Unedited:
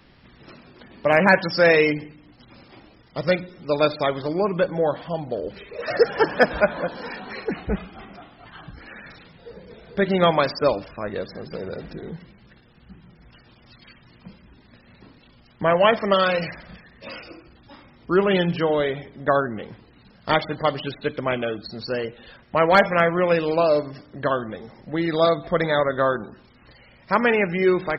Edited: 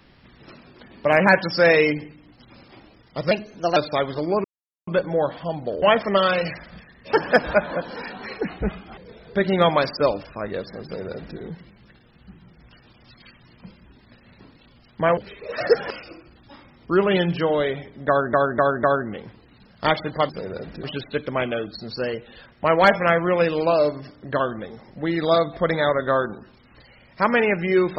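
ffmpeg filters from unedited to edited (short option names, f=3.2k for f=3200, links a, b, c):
-filter_complex "[0:a]asplit=14[a][b][c][d][e][f][g][h][i][j][k][l][m][n];[a]atrim=end=3.314[o];[b]atrim=start=3.31:end=3.84,asetpts=PTS-STARTPTS,asetrate=51597,aresample=44100[p];[c]atrim=start=3.836:end=4.52,asetpts=PTS-STARTPTS,afade=t=out:st=0.68:d=0.004:c=hsin,apad=pad_dur=0.43[q];[d]atrim=start=4.52:end=5.472,asetpts=PTS-STARTPTS,afade=t=in:d=0.004:c=hsin[r];[e]atrim=start=15.788:end=17.102[s];[f]atrim=start=6.198:end=8.042[t];[g]atrim=start=9.588:end=15.792[u];[h]atrim=start=5.468:end=6.202[v];[i]atrim=start=17.098:end=19.532[w];[j]atrim=start=19.278:end=19.532[x];[k]atrim=start=19.278:end=19.532[y];[l]atrim=start=19.278:end=20.742[z];[m]atrim=start=11.458:end=12.002[aa];[n]atrim=start=20.738[ab];[o][p]acrossfade=d=0.004:c1=hsin:c2=hsin[ac];[q][r]concat=n=2:v=0:a=1[ad];[ac][ad]acrossfade=d=0.004:c1=hsin:c2=hsin[ae];[ae][s]acrossfade=d=0.004:c1=hsin:c2=hsin[af];[af][t]acrossfade=d=0.004:c1=hsin:c2=hsin[ag];[ag][u]acrossfade=d=0.004:c1=hsin:c2=hsin[ah];[ah][v]acrossfade=d=0.004:c1=hsin:c2=hsin[ai];[ai][w]acrossfade=d=0.004:c1=hsin:c2=hsin[aj];[aj][x]acrossfade=d=0.004:c1=hsin:c2=hsin[ak];[ak][y]acrossfade=d=0.004:c1=hsin:c2=hsin[al];[al][z]acrossfade=d=0.004:c1=hsin:c2=hsin[am];[am][aa]acrossfade=d=0.004:c1=hsin:c2=hsin[an];[an][ab]acrossfade=d=0.004:c1=hsin:c2=hsin"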